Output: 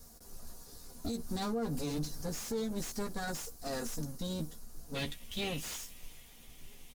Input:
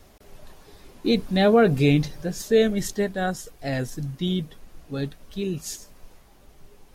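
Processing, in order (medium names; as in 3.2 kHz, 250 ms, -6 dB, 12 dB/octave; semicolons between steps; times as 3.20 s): comb filter that takes the minimum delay 4.2 ms; doubling 13 ms -6 dB; compression 3:1, threshold -24 dBFS, peak gain reduction 10.5 dB; tone controls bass +6 dB, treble +14 dB; peak limiter -19 dBFS, peak gain reduction 10 dB; high-order bell 2.6 kHz -8 dB 1.1 oct, from 4.94 s +10 dB; slew-rate limiter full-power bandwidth 170 Hz; trim -8 dB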